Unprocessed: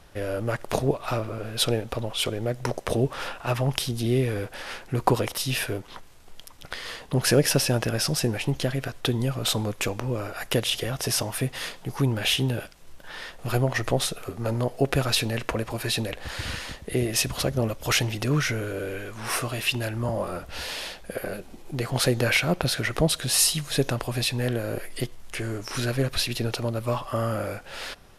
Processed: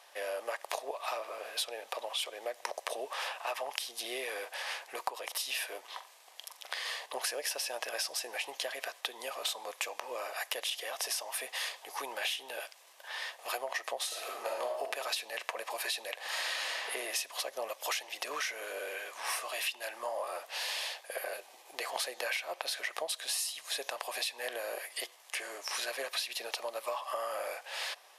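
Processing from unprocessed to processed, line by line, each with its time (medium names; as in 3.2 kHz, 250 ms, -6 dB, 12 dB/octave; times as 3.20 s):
5.80–7.06 s: flutter echo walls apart 7.5 m, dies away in 0.29 s
14.06–14.81 s: reverb throw, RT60 0.88 s, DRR -2 dB
16.28–16.86 s: reverb throw, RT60 1.3 s, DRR -6.5 dB
whole clip: high-pass 620 Hz 24 dB/octave; band-stop 1.4 kHz, Q 5.8; compression 10:1, threshold -32 dBFS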